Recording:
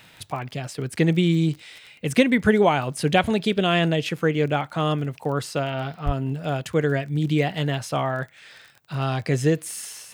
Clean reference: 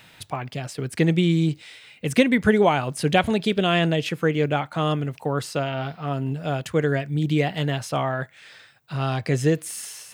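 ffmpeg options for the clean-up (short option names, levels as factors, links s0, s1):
-filter_complex "[0:a]adeclick=t=4,asplit=3[s0][s1][s2];[s0]afade=t=out:st=6.05:d=0.02[s3];[s1]highpass=f=140:w=0.5412,highpass=f=140:w=1.3066,afade=t=in:st=6.05:d=0.02,afade=t=out:st=6.17:d=0.02[s4];[s2]afade=t=in:st=6.17:d=0.02[s5];[s3][s4][s5]amix=inputs=3:normalize=0"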